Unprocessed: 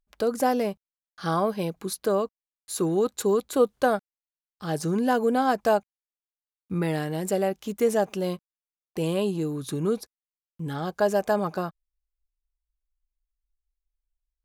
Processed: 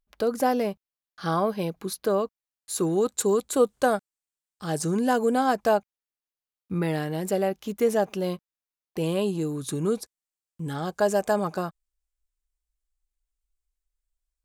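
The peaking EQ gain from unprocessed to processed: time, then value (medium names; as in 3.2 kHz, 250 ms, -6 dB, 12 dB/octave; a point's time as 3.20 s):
peaking EQ 8 kHz 0.62 oct
2.17 s -3.5 dB
3.17 s +8.5 dB
5.36 s +8.5 dB
5.77 s -3 dB
9.00 s -3 dB
9.54 s +7.5 dB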